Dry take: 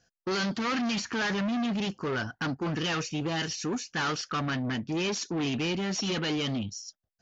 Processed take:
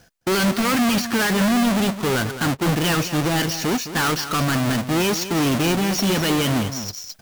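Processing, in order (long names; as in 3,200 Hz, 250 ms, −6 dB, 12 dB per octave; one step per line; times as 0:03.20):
each half-wave held at its own peak
single-tap delay 213 ms −12 dB
reversed playback
upward compression, threshold −30 dBFS
reversed playback
level +5.5 dB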